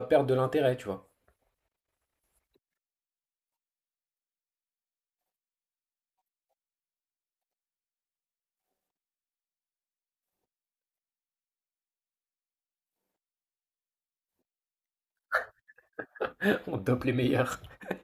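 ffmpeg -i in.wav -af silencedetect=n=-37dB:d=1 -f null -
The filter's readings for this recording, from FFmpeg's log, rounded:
silence_start: 0.96
silence_end: 15.32 | silence_duration: 14.36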